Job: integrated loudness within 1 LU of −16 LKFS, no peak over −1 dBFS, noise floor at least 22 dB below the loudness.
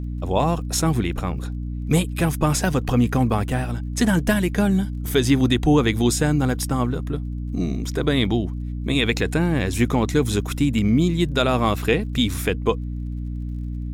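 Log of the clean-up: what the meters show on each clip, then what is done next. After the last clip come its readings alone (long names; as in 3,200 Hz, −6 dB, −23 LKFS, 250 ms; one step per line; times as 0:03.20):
crackle rate 31 per second; mains hum 60 Hz; hum harmonics up to 300 Hz; level of the hum −25 dBFS; integrated loudness −22.0 LKFS; sample peak −6.5 dBFS; target loudness −16.0 LKFS
→ click removal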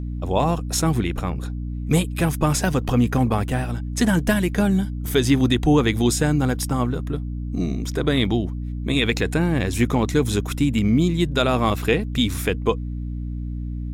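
crackle rate 0.14 per second; mains hum 60 Hz; hum harmonics up to 300 Hz; level of the hum −26 dBFS
→ mains-hum notches 60/120/180/240/300 Hz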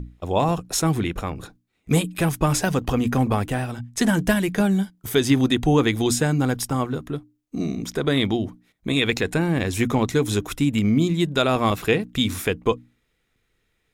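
mains hum none found; integrated loudness −22.5 LKFS; sample peak −6.0 dBFS; target loudness −16.0 LKFS
→ level +6.5 dB
brickwall limiter −1 dBFS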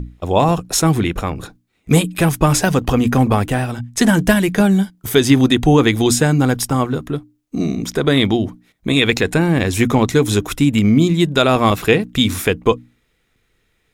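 integrated loudness −16.0 LKFS; sample peak −1.0 dBFS; background noise floor −65 dBFS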